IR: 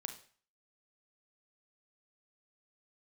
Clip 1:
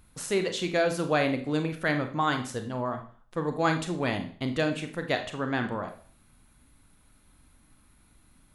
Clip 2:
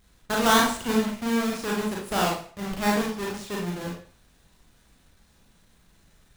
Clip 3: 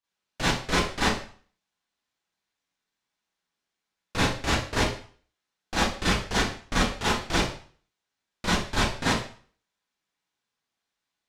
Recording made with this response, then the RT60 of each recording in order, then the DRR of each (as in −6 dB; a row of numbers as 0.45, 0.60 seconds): 1; 0.45, 0.45, 0.45 seconds; 6.0, −3.0, −11.0 decibels